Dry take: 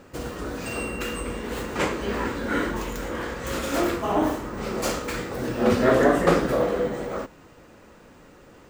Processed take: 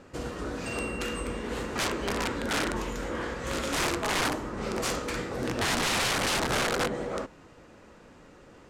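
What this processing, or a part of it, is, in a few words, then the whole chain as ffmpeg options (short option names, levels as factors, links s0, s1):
overflowing digital effects unit: -af "aeval=exprs='(mod(8.91*val(0)+1,2)-1)/8.91':c=same,lowpass=9400,volume=0.75"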